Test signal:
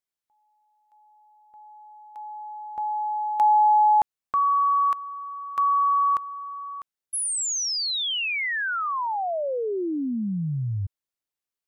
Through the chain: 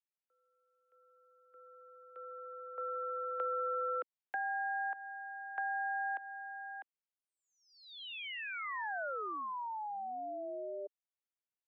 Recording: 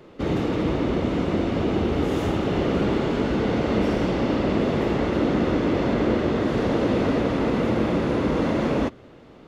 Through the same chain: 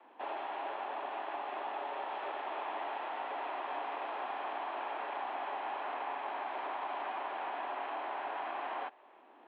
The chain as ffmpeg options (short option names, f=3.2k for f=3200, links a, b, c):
-filter_complex "[0:a]aeval=exprs='val(0)*sin(2*PI*420*n/s)':c=same,acrossover=split=390|980[a][b][c];[a]acompressor=threshold=-50dB:ratio=4[d];[b]acompressor=threshold=-33dB:ratio=4[e];[c]acompressor=threshold=-34dB:ratio=4[f];[d][e][f]amix=inputs=3:normalize=0,highpass=f=210:t=q:w=0.5412,highpass=f=210:t=q:w=1.307,lowpass=f=3.2k:t=q:w=0.5176,lowpass=f=3.2k:t=q:w=0.7071,lowpass=f=3.2k:t=q:w=1.932,afreqshift=75,volume=-7dB"